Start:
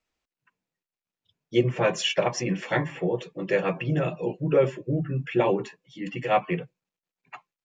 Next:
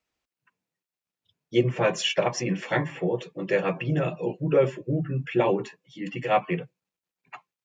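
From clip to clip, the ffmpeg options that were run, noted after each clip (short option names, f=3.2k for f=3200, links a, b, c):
-af "highpass=44"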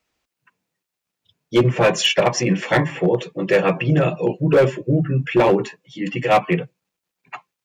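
-af "asoftclip=type=hard:threshold=-17.5dB,volume=8.5dB"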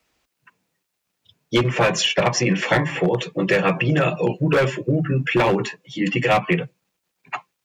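-filter_complex "[0:a]acrossover=split=200|920|7800[a][b][c][d];[a]acompressor=threshold=-29dB:ratio=4[e];[b]acompressor=threshold=-27dB:ratio=4[f];[c]acompressor=threshold=-25dB:ratio=4[g];[d]acompressor=threshold=-56dB:ratio=4[h];[e][f][g][h]amix=inputs=4:normalize=0,volume=5.5dB"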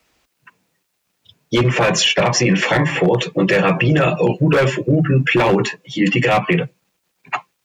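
-af "alimiter=limit=-13dB:level=0:latency=1:release=14,volume=6.5dB"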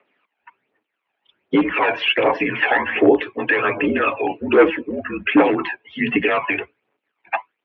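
-af "aphaser=in_gain=1:out_gain=1:delay=1.3:decay=0.62:speed=1.3:type=triangular,highpass=f=350:t=q:w=0.5412,highpass=f=350:t=q:w=1.307,lowpass=f=2.9k:t=q:w=0.5176,lowpass=f=2.9k:t=q:w=0.7071,lowpass=f=2.9k:t=q:w=1.932,afreqshift=-64,volume=-2dB"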